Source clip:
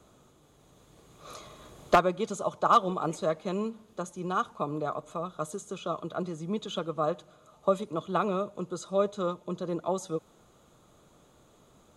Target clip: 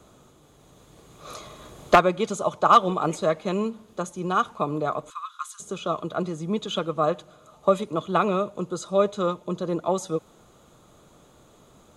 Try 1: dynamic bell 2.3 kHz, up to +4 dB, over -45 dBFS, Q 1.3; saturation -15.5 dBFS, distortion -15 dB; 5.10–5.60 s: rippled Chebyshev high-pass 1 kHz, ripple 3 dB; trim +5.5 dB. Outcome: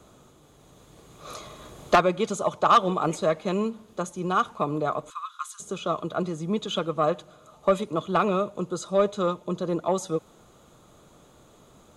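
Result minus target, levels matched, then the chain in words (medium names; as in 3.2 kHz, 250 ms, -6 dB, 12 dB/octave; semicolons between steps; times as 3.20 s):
saturation: distortion +15 dB
dynamic bell 2.3 kHz, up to +4 dB, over -45 dBFS, Q 1.3; saturation -5.5 dBFS, distortion -30 dB; 5.10–5.60 s: rippled Chebyshev high-pass 1 kHz, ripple 3 dB; trim +5.5 dB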